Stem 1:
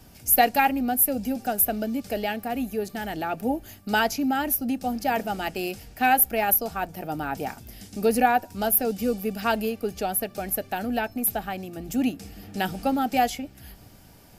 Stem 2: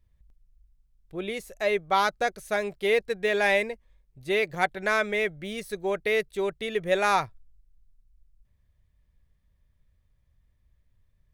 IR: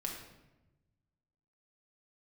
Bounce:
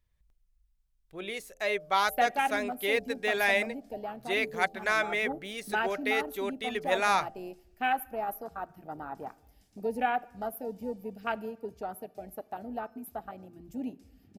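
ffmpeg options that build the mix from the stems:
-filter_complex "[0:a]afwtdn=0.0501,equalizer=f=12k:t=o:w=2.2:g=-2.5,adelay=1800,volume=-6dB,asplit=2[a][b];[b]volume=-17dB[c];[1:a]bandreject=f=86.92:t=h:w=4,bandreject=f=173.84:t=h:w=4,bandreject=f=260.76:t=h:w=4,bandreject=f=347.68:t=h:w=4,bandreject=f=434.6:t=h:w=4,bandreject=f=521.52:t=h:w=4,bandreject=f=608.44:t=h:w=4,bandreject=f=695.36:t=h:w=4,bandreject=f=782.28:t=h:w=4,volume=-1dB[d];[2:a]atrim=start_sample=2205[e];[c][e]afir=irnorm=-1:irlink=0[f];[a][d][f]amix=inputs=3:normalize=0,lowshelf=f=490:g=-9"

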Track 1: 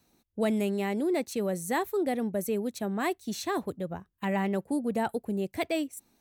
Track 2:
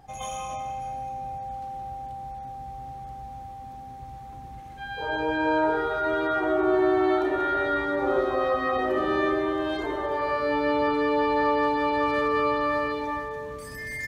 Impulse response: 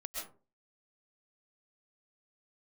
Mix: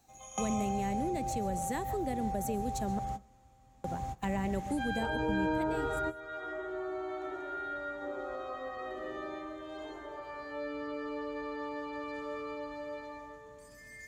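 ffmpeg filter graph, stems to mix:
-filter_complex "[0:a]volume=-4dB,asplit=3[a][b][c];[a]atrim=end=2.99,asetpts=PTS-STARTPTS,afade=t=out:st=2.986:d=0.004:c=hsin[d];[b]atrim=start=2.99:end=3.84,asetpts=PTS-STARTPTS,volume=0[e];[c]atrim=start=3.84,asetpts=PTS-STARTPTS,afade=t=in:d=0.004:c=hsin[f];[d][e][f]concat=n=3:v=0:a=1,asplit=3[g][h][i];[h]volume=-11.5dB[j];[1:a]volume=3dB,asplit=2[k][l];[l]volume=-19dB[m];[i]apad=whole_len=620506[n];[k][n]sidechaingate=range=-33dB:threshold=-58dB:ratio=16:detection=peak[o];[2:a]atrim=start_sample=2205[p];[j][m]amix=inputs=2:normalize=0[q];[q][p]afir=irnorm=-1:irlink=0[r];[g][o][r]amix=inputs=3:normalize=0,equalizer=f=7k:t=o:w=0.39:g=11,acrossover=split=240[s][t];[t]acompressor=threshold=-33dB:ratio=6[u];[s][u]amix=inputs=2:normalize=0"

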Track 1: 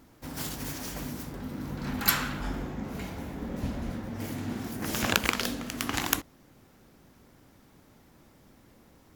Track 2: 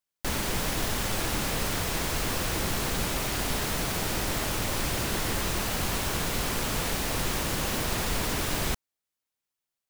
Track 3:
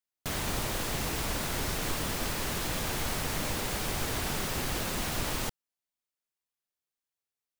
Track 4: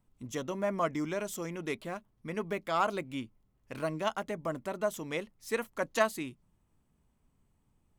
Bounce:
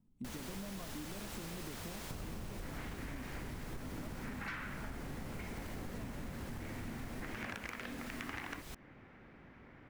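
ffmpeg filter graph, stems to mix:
-filter_complex "[0:a]lowpass=f=2.1k:t=q:w=2.4,adelay=2400,volume=-0.5dB[a];[1:a]volume=-14dB[b];[2:a]afwtdn=0.0141,lowshelf=f=360:g=11,adelay=1850,volume=-10dB[c];[3:a]lowshelf=f=200:g=7,acompressor=threshold=-38dB:ratio=6,equalizer=f=220:t=o:w=1.3:g=14.5,volume=-10.5dB[d];[a][b][c][d]amix=inputs=4:normalize=0,asoftclip=type=tanh:threshold=-19dB,acompressor=threshold=-40dB:ratio=12"

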